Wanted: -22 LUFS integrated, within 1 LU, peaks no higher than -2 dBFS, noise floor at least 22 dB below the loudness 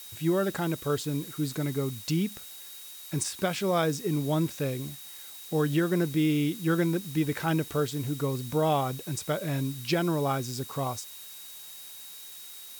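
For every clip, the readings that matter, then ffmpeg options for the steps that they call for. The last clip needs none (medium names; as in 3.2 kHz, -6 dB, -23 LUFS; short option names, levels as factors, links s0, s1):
steady tone 3.8 kHz; tone level -50 dBFS; noise floor -45 dBFS; noise floor target -51 dBFS; loudness -29.0 LUFS; peak level -14.5 dBFS; loudness target -22.0 LUFS
-> -af "bandreject=f=3800:w=30"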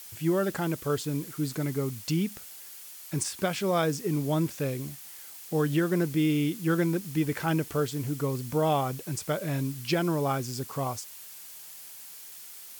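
steady tone not found; noise floor -46 dBFS; noise floor target -51 dBFS
-> -af "afftdn=nr=6:nf=-46"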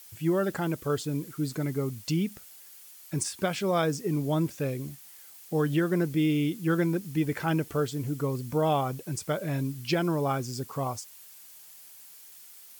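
noise floor -50 dBFS; noise floor target -51 dBFS
-> -af "afftdn=nr=6:nf=-50"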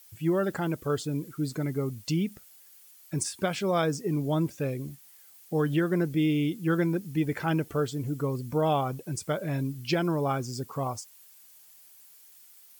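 noise floor -55 dBFS; loudness -29.0 LUFS; peak level -15.0 dBFS; loudness target -22.0 LUFS
-> -af "volume=2.24"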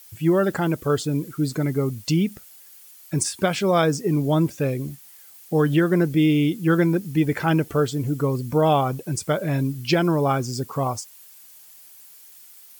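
loudness -22.0 LUFS; peak level -8.0 dBFS; noise floor -48 dBFS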